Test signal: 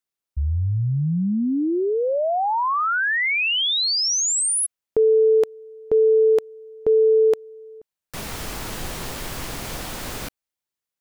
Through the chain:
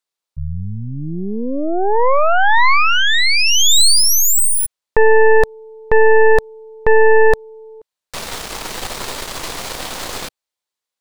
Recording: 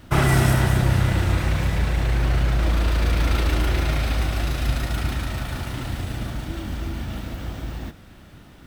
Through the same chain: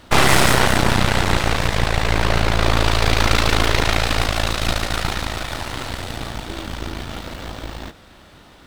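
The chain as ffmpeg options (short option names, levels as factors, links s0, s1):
-af "equalizer=f=125:t=o:w=1:g=-3,equalizer=f=500:t=o:w=1:g=6,equalizer=f=1000:t=o:w=1:g=7,equalizer=f=2000:t=o:w=1:g=3,equalizer=f=4000:t=o:w=1:g=8,equalizer=f=8000:t=o:w=1:g=5,aeval=exprs='0.75*(cos(1*acos(clip(val(0)/0.75,-1,1)))-cos(1*PI/2))+0.299*(cos(6*acos(clip(val(0)/0.75,-1,1)))-cos(6*PI/2))':c=same,volume=0.75"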